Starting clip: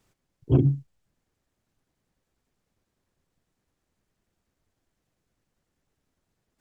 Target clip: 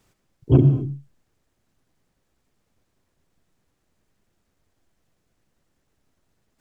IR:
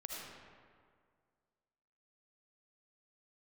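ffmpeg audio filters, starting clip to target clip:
-filter_complex "[0:a]asplit=2[a][b];[1:a]atrim=start_sample=2205,afade=t=out:st=0.3:d=0.01,atrim=end_sample=13671[c];[b][c]afir=irnorm=-1:irlink=0,volume=-2.5dB[d];[a][d]amix=inputs=2:normalize=0,volume=2dB"

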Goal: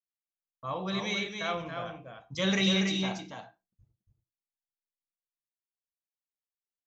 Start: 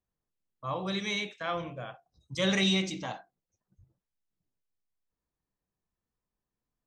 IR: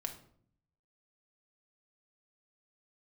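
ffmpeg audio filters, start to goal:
-filter_complex "[0:a]agate=range=-33dB:threshold=-57dB:ratio=3:detection=peak,aecho=1:1:281:0.531,asplit=2[a][b];[1:a]atrim=start_sample=2205,afade=t=out:st=0.17:d=0.01,atrim=end_sample=7938[c];[b][c]afir=irnorm=-1:irlink=0,volume=-3dB[d];[a][d]amix=inputs=2:normalize=0,aresample=16000,aresample=44100,volume=-4.5dB"

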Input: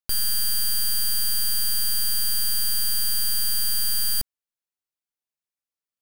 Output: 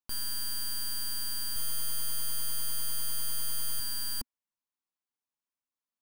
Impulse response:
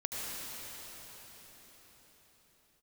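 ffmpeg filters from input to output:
-filter_complex "[0:a]equalizer=f=250:t=o:w=0.67:g=8,equalizer=f=1k:t=o:w=0.67:g=9,equalizer=f=16k:t=o:w=0.67:g=-4,alimiter=limit=-23.5dB:level=0:latency=1:release=80,asettb=1/sr,asplit=3[a][b][c];[a]atrim=end=1.544[d];[b]atrim=start=1.54:end=3.8,asetpts=PTS-STARTPTS,afade=t=in:d=0.004:c=qsin,afade=t=out:st=2.256:d=0.004:c=qsin,asplit=2[e][f];[f]adelay=20,volume=-3.5dB[g];[e][g]amix=inputs=2:normalize=0,atrim=end_sample=99666[h];[c]atrim=start=3.796[i];[d][h]acrossfade=d=0.004:c1=hsin:c2=qsin[j];[j][i]acrossfade=d=0.004:c1=qsin:c2=hsin,volume=-5.5dB"

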